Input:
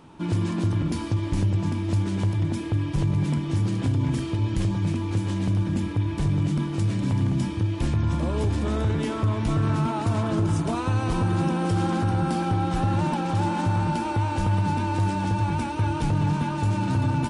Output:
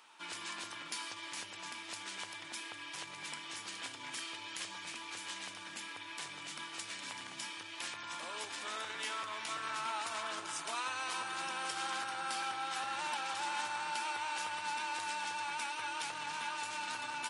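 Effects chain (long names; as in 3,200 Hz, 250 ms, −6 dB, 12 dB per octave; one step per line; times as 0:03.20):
high-pass filter 1,500 Hz 12 dB per octave
0:08.79–0:09.76: floating-point word with a short mantissa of 6 bits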